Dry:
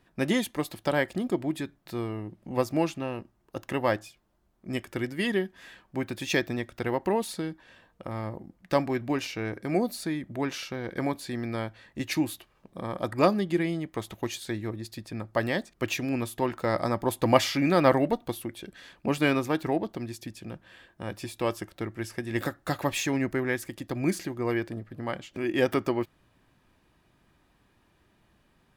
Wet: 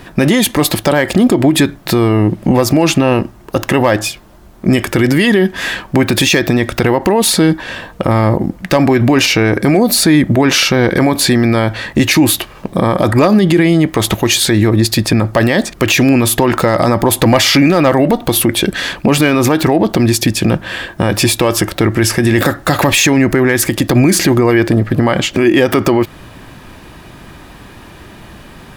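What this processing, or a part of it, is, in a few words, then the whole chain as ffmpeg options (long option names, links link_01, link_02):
loud club master: -af "acompressor=threshold=-28dB:ratio=2.5,asoftclip=type=hard:threshold=-20dB,alimiter=level_in=31dB:limit=-1dB:release=50:level=0:latency=1,volume=-1dB"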